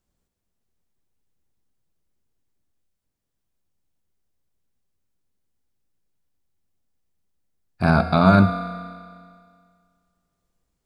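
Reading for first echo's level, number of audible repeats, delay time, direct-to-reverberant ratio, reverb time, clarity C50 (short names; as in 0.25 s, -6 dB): none, none, none, 7.5 dB, 2.0 s, 9.0 dB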